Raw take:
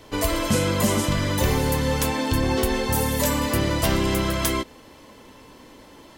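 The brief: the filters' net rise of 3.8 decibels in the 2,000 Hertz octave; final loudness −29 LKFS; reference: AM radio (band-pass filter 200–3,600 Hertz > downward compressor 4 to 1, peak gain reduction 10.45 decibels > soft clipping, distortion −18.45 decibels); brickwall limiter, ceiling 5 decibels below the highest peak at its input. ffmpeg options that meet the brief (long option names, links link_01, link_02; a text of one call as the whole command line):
ffmpeg -i in.wav -af "equalizer=frequency=2000:width_type=o:gain=5,alimiter=limit=-13.5dB:level=0:latency=1,highpass=200,lowpass=3600,acompressor=threshold=-32dB:ratio=4,asoftclip=threshold=-27.5dB,volume=6dB" out.wav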